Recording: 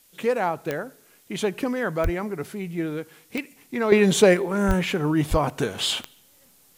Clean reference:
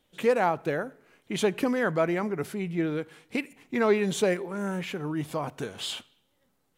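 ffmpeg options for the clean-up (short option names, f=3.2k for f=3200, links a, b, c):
-filter_complex "[0:a]adeclick=t=4,asplit=3[a][b][c];[a]afade=t=out:st=2.03:d=0.02[d];[b]highpass=f=140:w=0.5412,highpass=f=140:w=1.3066,afade=t=in:st=2.03:d=0.02,afade=t=out:st=2.15:d=0.02[e];[c]afade=t=in:st=2.15:d=0.02[f];[d][e][f]amix=inputs=3:normalize=0,asplit=3[g][h][i];[g]afade=t=out:st=4.67:d=0.02[j];[h]highpass=f=140:w=0.5412,highpass=f=140:w=1.3066,afade=t=in:st=4.67:d=0.02,afade=t=out:st=4.79:d=0.02[k];[i]afade=t=in:st=4.79:d=0.02[l];[j][k][l]amix=inputs=3:normalize=0,asplit=3[m][n][o];[m]afade=t=out:st=5.3:d=0.02[p];[n]highpass=f=140:w=0.5412,highpass=f=140:w=1.3066,afade=t=in:st=5.3:d=0.02,afade=t=out:st=5.42:d=0.02[q];[o]afade=t=in:st=5.42:d=0.02[r];[p][q][r]amix=inputs=3:normalize=0,agate=range=-21dB:threshold=-49dB,asetnsamples=n=441:p=0,asendcmd='3.92 volume volume -9dB',volume=0dB"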